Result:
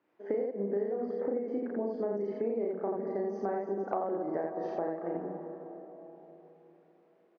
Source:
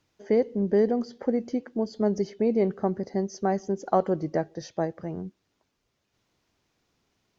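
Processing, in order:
Chebyshev band-pass filter 310–1,600 Hz, order 2
parametric band 1,400 Hz −4 dB 0.45 octaves
loudspeakers that aren't time-aligned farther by 12 metres −1 dB, 29 metres −1 dB
comb and all-pass reverb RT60 4 s, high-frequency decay 0.35×, pre-delay 55 ms, DRR 11.5 dB
downward compressor 6 to 1, threshold −30 dBFS, peak gain reduction 16 dB

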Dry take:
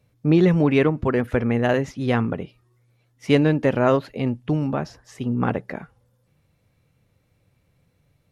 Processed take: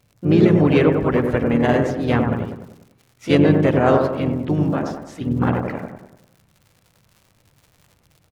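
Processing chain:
surface crackle 100 per second −40 dBFS
delay with a low-pass on its return 98 ms, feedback 47%, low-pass 1,400 Hz, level −3 dB
pitch-shifted copies added −7 semitones −9 dB, +3 semitones −7 dB

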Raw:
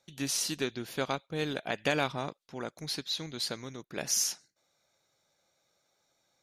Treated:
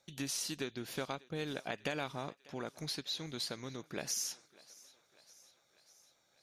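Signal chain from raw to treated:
downward compressor 2.5 to 1, threshold −38 dBFS, peak gain reduction 10 dB
on a send: feedback echo with a high-pass in the loop 595 ms, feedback 66%, high-pass 400 Hz, level −21.5 dB

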